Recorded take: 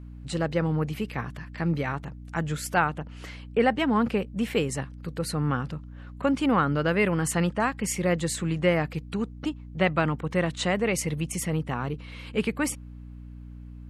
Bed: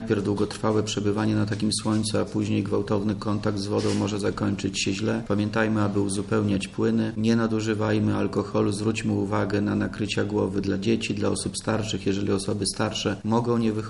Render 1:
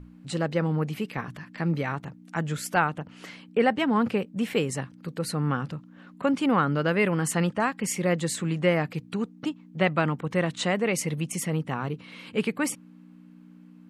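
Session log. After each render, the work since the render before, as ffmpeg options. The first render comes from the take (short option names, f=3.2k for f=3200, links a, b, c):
-af "bandreject=f=60:t=h:w=6,bandreject=f=120:t=h:w=6"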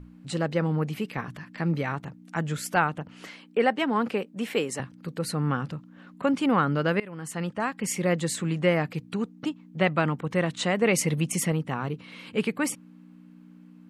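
-filter_complex "[0:a]asettb=1/sr,asplit=3[a][b][c];[a]atrim=end=3.274[d];[b]atrim=start=3.27:end=4.8,asetpts=PTS-STARTPTS,afade=t=in:d=0.004:c=qsin,afade=t=out:st=1.526:d=0.004:c=qsin,highpass=250[e];[c]atrim=start=4.796[f];[d][e]acrossfade=d=0.004:c1=hsin:c2=qsin[g];[g][f]acrossfade=d=0.004:c1=qsin:c2=hsin,asplit=4[h][i][j][k];[h]atrim=end=7,asetpts=PTS-STARTPTS,afade=t=out:st=6.996:d=0.004:c=hsin:silence=0.0794328[l];[i]atrim=start=7:end=10.822,asetpts=PTS-STARTPTS,afade=t=in:d=0.94:silence=0.0794328[m];[j]atrim=start=10.818:end=11.522,asetpts=PTS-STARTPTS,volume=3.5dB[n];[k]atrim=start=11.518[o];[l][m]concat=n=2:v=0:a=1[p];[p][n]acrossfade=d=0.004:c1=hsin:c2=hsin[q];[q][o]acrossfade=d=0.004:c1=hsin:c2=hsin"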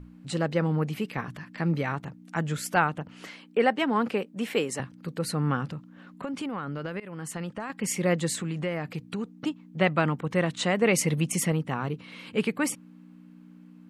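-filter_complex "[0:a]asettb=1/sr,asplit=3[a][b][c];[a]atrim=end=5.674[d];[b]atrim=start=5.67:end=7.7,asetpts=PTS-STARTPTS,afade=t=in:d=0.004:c=qsin,afade=t=out:st=2.026:d=0.004:c=qsin,acompressor=threshold=-29dB:ratio=12:attack=3.2:release=140:knee=1:detection=peak[e];[c]atrim=start=7.696[f];[d][e]acrossfade=d=0.004:c1=hsin:c2=qsin[g];[g][f]acrossfade=d=0.004:c1=qsin:c2=hsin,asettb=1/sr,asplit=3[h][i][j];[h]atrim=end=8.394[k];[i]atrim=start=8.39:end=9.29,asetpts=PTS-STARTPTS,afade=t=in:d=0.004:c=qsin,afade=t=out:st=0.896:d=0.004:c=qsin,acompressor=threshold=-28dB:ratio=3:attack=3.2:release=140:knee=1:detection=peak[l];[j]atrim=start=9.286[m];[k][l]acrossfade=d=0.004:c1=hsin:c2=qsin[n];[n][m]acrossfade=d=0.004:c1=qsin:c2=hsin"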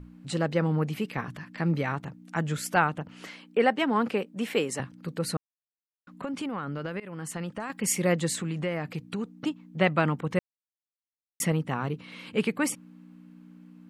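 -filter_complex "[0:a]asettb=1/sr,asplit=3[a][b][c];[a]atrim=end=7.534[d];[b]atrim=start=7.53:end=8.12,asetpts=PTS-STARTPTS,afade=t=in:d=0.004:c=qsin,afade=t=out:st=0.586:d=0.004:c=qsin,highshelf=f=8.2k:g=8.5[e];[c]atrim=start=8.116[f];[d][e]acrossfade=d=0.004:c1=hsin:c2=qsin[g];[g][f]acrossfade=d=0.004:c1=qsin:c2=hsin,asplit=5[h][i][j][k][l];[h]atrim=end=5.37,asetpts=PTS-STARTPTS,afade=t=out:st=5.366:d=0.004:c=hsin[m];[i]atrim=start=5.37:end=6.07,asetpts=PTS-STARTPTS,volume=0[n];[j]atrim=start=6.07:end=10.39,asetpts=PTS-STARTPTS,afade=t=in:d=0.004:c=hsin,afade=t=out:st=4.316:d=0.004:c=hsin[o];[k]atrim=start=10.39:end=11.4,asetpts=PTS-STARTPTS,volume=0[p];[l]atrim=start=11.4,asetpts=PTS-STARTPTS,afade=t=in:d=0.004:c=hsin[q];[m][n][o][p][q]concat=n=5:v=0:a=1"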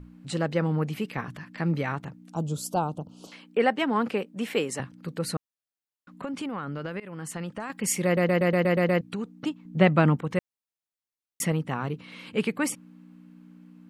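-filter_complex "[0:a]asettb=1/sr,asplit=3[a][b][c];[a]atrim=end=2.324[d];[b]atrim=start=2.32:end=3.32,asetpts=PTS-STARTPTS,afade=t=in:d=0.004:c=qsin,afade=t=out:st=0.996:d=0.004:c=qsin,asuperstop=centerf=1900:order=4:qfactor=0.65[e];[c]atrim=start=3.316[f];[d][e]acrossfade=d=0.004:c1=hsin:c2=qsin[g];[g][f]acrossfade=d=0.004:c1=qsin:c2=hsin,asettb=1/sr,asplit=3[h][i][j];[h]atrim=end=9.654[k];[i]atrim=start=9.65:end=10.17,asetpts=PTS-STARTPTS,afade=t=in:d=0.004:c=qsin,afade=t=out:st=0.516:d=0.004:c=qsin,lowshelf=f=500:g=7.5[l];[j]atrim=start=10.166[m];[k][l]acrossfade=d=0.004:c1=hsin:c2=qsin[n];[n][m]acrossfade=d=0.004:c1=qsin:c2=hsin,asplit=9[o][p][q][r][s][t][u][v][w];[o]atrim=end=8.172[x];[p]atrim=start=8.048:end=8.172[y];[q]atrim=start=8.048:end=8.172[z];[r]atrim=start=8.048:end=8.172[aa];[s]atrim=start=8.048:end=8.172[ab];[t]atrim=start=8.048:end=8.172[ac];[u]atrim=start=8.048:end=8.172[ad];[v]atrim=start=8.048:end=8.172[ae];[w]atrim=start=9.008[af];[x][y]acrossfade=d=0.004:c1=hsin:c2=hsin[ag];[ag][z]acrossfade=d=0.004:c1=hsin:c2=hsin[ah];[ah][aa]acrossfade=d=0.004:c1=hsin:c2=hsin[ai];[ai][ab]acrossfade=d=0.004:c1=hsin:c2=hsin[aj];[aj][ac]acrossfade=d=0.004:c1=hsin:c2=hsin[ak];[ak][ad]acrossfade=d=0.004:c1=hsin:c2=hsin[al];[al][ae]acrossfade=d=0.004:c1=hsin:c2=hsin[am];[am][af]acrossfade=d=0.004:c1=hsin:c2=hsin"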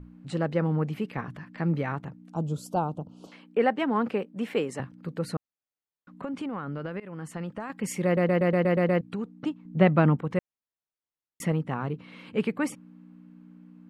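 -af "highshelf=f=2.9k:g=-11.5"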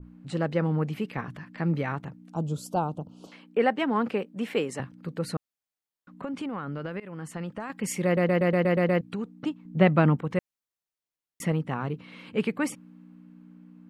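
-af "adynamicequalizer=threshold=0.00708:dfrequency=1900:dqfactor=0.7:tfrequency=1900:tqfactor=0.7:attack=5:release=100:ratio=0.375:range=1.5:mode=boostabove:tftype=highshelf"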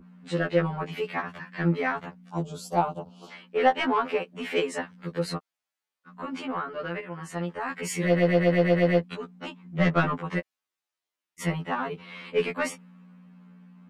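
-filter_complex "[0:a]asplit=2[a][b];[b]highpass=f=720:p=1,volume=15dB,asoftclip=type=tanh:threshold=-8.5dB[c];[a][c]amix=inputs=2:normalize=0,lowpass=f=3.5k:p=1,volume=-6dB,afftfilt=real='re*2*eq(mod(b,4),0)':imag='im*2*eq(mod(b,4),0)':win_size=2048:overlap=0.75"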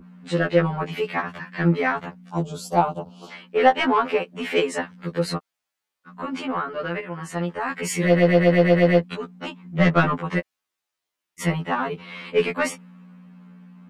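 -af "volume=5dB"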